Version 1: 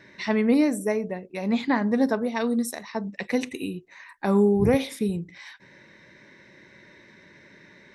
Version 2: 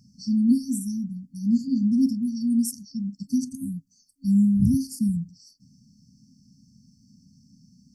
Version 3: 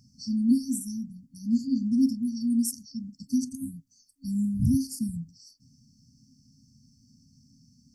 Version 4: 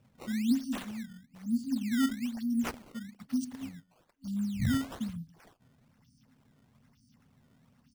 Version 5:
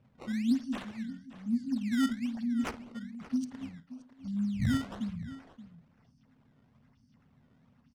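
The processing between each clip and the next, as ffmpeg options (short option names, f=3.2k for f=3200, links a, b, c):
-af "afftfilt=real='re*(1-between(b*sr/4096,270,4400))':imag='im*(1-between(b*sr/4096,270,4400))':win_size=4096:overlap=0.75,volume=3.5dB"
-af "equalizer=f=190:w=4.8:g=-12.5"
-af "aecho=1:1:145:0.0631,acrusher=samples=15:mix=1:aa=0.000001:lfo=1:lforange=24:lforate=1.1,volume=-5.5dB"
-af "aecho=1:1:54|576:0.178|0.178,adynamicsmooth=sensitivity=7.5:basefreq=4.1k"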